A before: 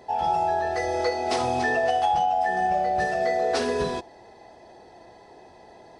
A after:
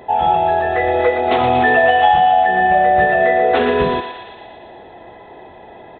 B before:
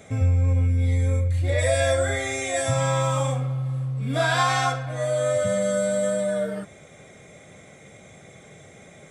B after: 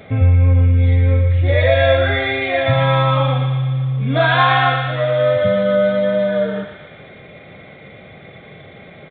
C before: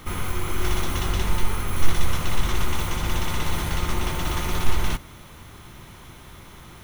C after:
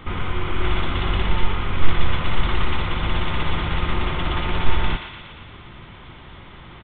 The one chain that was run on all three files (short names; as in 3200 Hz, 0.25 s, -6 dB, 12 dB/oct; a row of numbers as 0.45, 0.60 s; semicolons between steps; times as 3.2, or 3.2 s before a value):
thinning echo 0.117 s, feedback 71%, high-pass 1000 Hz, level -5.5 dB; downsampling 8000 Hz; normalise peaks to -1.5 dBFS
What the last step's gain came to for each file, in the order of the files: +10.0, +8.0, +2.5 dB